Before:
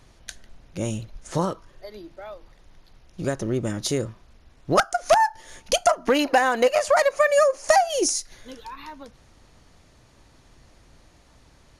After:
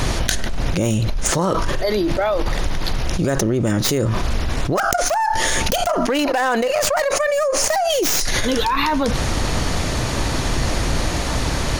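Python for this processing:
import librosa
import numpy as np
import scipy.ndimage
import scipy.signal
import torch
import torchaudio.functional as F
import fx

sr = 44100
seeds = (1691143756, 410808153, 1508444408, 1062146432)

y = fx.tracing_dist(x, sr, depth_ms=0.13)
y = fx.env_flatten(y, sr, amount_pct=100)
y = y * 10.0 ** (-6.0 / 20.0)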